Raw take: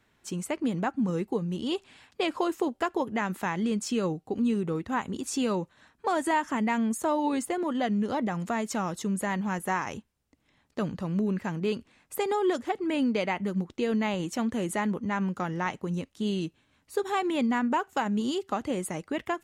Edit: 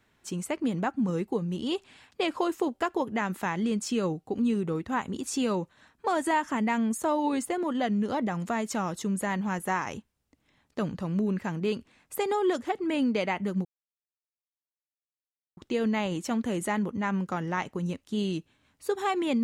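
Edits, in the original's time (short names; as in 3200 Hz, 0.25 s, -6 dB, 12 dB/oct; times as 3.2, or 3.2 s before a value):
13.65 insert silence 1.92 s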